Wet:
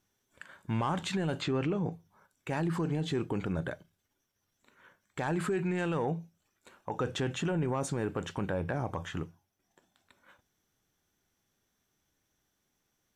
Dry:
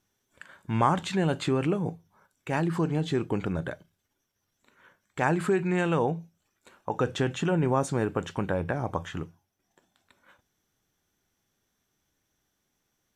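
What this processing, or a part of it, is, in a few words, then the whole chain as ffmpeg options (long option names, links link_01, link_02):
soft clipper into limiter: -filter_complex "[0:a]asoftclip=type=tanh:threshold=-15.5dB,alimiter=limit=-22dB:level=0:latency=1:release=33,asettb=1/sr,asplit=3[link_01][link_02][link_03];[link_01]atrim=end=1.414[link_04];[link_02]atrim=start=1.41:end=1.92,asetpts=PTS-STARTPTS,afade=type=in:duration=0.004:curve=qsin,afade=type=out:start_time=0.506:duration=0.004:curve=qsin,lowpass=frequency=6500:width=0.5412,lowpass=frequency=6500:width=1.3066[link_05];[link_03]atrim=start=1.916[link_06];[link_04][link_05]acrossfade=duration=0.004:curve1=hsin:curve2=qsin[link_07];[link_07][link_06]acrossfade=duration=0.004:curve1=qsin:curve2=hsin,volume=-1.5dB"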